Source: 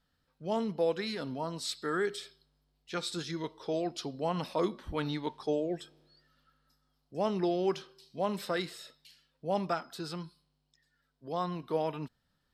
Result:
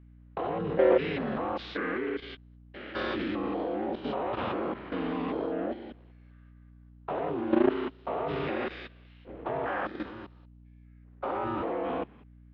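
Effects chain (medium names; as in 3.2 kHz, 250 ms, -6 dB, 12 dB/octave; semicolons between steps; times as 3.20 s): spectrogram pixelated in time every 200 ms; in parallel at -2 dB: compression 5:1, threshold -45 dBFS, peak gain reduction 15 dB; on the sum: waveshaping leveller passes 2; harmony voices +4 st 0 dB, +5 st -1 dB, +7 st -10 dB; mistuned SSB -120 Hz 350–3100 Hz; hum 60 Hz, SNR 22 dB; level held to a coarse grid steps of 11 dB; trim +1.5 dB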